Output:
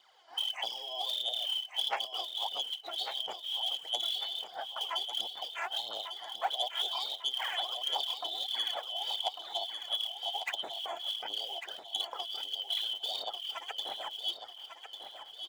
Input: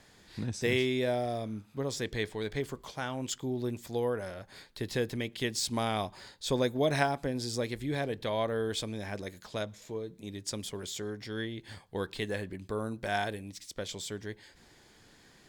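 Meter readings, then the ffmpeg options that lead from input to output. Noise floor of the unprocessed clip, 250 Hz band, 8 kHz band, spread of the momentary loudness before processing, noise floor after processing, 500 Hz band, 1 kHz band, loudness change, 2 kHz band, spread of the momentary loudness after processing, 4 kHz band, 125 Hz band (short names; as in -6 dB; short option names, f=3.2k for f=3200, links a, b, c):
-60 dBFS, under -25 dB, -8.5 dB, 11 LU, -51 dBFS, -13.0 dB, -0.5 dB, 0.0 dB, -6.0 dB, 6 LU, +10.5 dB, under -40 dB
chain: -af "afftfilt=real='real(if(lt(b,272),68*(eq(floor(b/68),0)*2+eq(floor(b/68),1)*3+eq(floor(b/68),2)*0+eq(floor(b/68),3)*1)+mod(b,68),b),0)':imag='imag(if(lt(b,272),68*(eq(floor(b/68),0)*2+eq(floor(b/68),1)*3+eq(floor(b/68),2)*0+eq(floor(b/68),3)*1)+mod(b,68),b),0)':win_size=2048:overlap=0.75,lowpass=f=1.9k:p=1,aemphasis=mode=reproduction:type=riaa,afftdn=nr=13:nf=-49,acompressor=threshold=-47dB:ratio=12,aphaser=in_gain=1:out_gain=1:delay=3:decay=0.66:speed=1.5:type=sinusoidal,asoftclip=type=tanh:threshold=-34.5dB,highpass=f=790:t=q:w=3.4,crystalizer=i=4.5:c=0,aecho=1:1:1148|2296|3444|4592|5740:0.376|0.162|0.0695|0.0299|0.0128,volume=6.5dB"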